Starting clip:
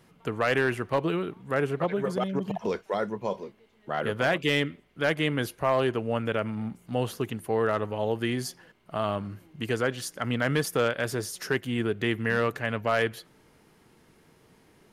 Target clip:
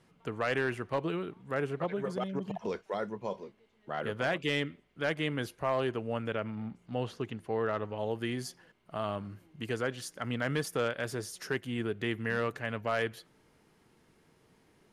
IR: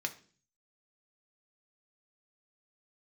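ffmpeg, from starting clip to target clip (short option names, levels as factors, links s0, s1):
-af "asetnsamples=n=441:p=0,asendcmd='6.34 lowpass f 5400;7.98 lowpass f 12000',lowpass=10000,volume=0.501"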